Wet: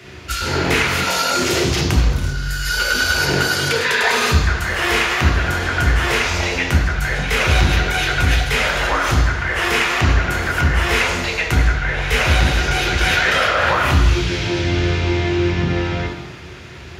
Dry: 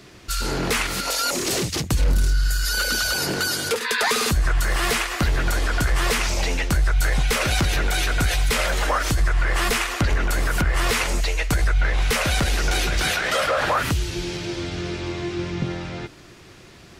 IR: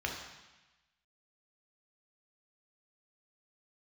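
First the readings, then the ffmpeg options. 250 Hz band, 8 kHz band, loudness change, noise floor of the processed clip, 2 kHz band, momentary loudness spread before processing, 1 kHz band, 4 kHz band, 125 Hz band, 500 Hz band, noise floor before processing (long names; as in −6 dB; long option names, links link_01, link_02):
+6.0 dB, 0.0 dB, +5.0 dB, −34 dBFS, +7.0 dB, 7 LU, +5.5 dB, +4.5 dB, +6.5 dB, +5.0 dB, −46 dBFS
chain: -filter_complex "[0:a]acompressor=threshold=-22dB:ratio=6[link_01];[1:a]atrim=start_sample=2205[link_02];[link_01][link_02]afir=irnorm=-1:irlink=0,volume=5dB"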